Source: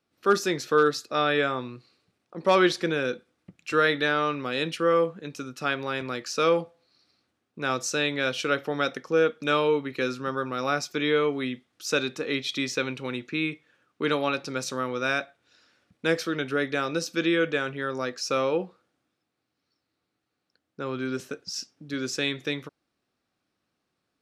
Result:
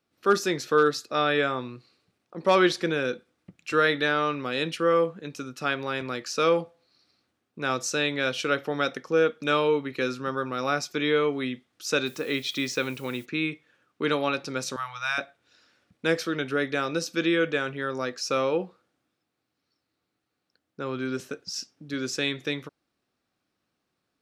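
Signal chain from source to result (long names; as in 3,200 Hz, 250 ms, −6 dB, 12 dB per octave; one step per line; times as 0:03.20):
0:12.05–0:13.24: background noise blue −54 dBFS
0:14.76–0:15.18: elliptic band-stop filter 110–800 Hz, stop band 50 dB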